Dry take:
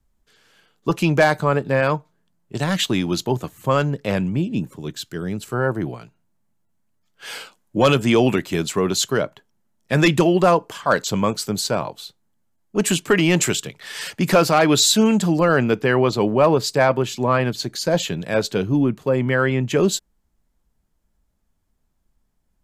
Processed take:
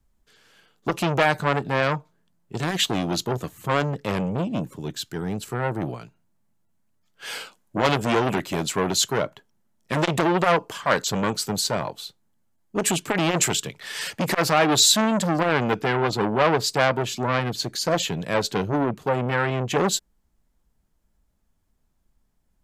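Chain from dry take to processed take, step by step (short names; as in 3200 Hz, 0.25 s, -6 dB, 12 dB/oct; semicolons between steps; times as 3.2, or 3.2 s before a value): core saturation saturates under 1500 Hz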